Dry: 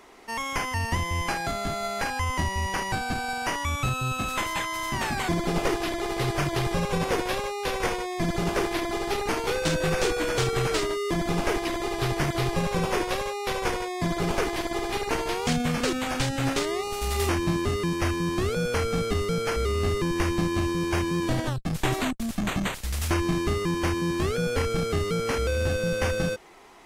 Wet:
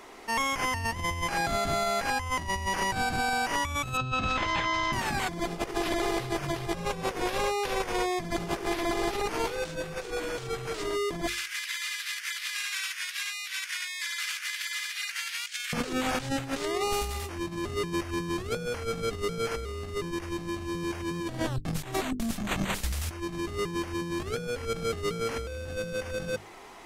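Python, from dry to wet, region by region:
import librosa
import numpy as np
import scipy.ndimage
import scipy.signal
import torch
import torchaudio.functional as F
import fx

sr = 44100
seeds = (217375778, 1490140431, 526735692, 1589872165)

y = fx.chain(x, sr, fx.lowpass(hz=5300.0, slope=24),
    fx.peak_eq(hz=82.0, db=6.0, octaves=1.6),
    fx.over_compress(threshold_db=-29.0, ratio=-0.5), at=(3.97, 4.93))
y = fx.chain(y, sr, fx.steep_highpass(hz=1600.0, slope=36),
    fx.over_compress(threshold_db=-37.0, ratio=-0.5), at=(11.27, 15.73))
y = fx.hum_notches(y, sr, base_hz=50, count=9)
y = fx.over_compress(y, sr, threshold_db=-30.0, ratio=-0.5)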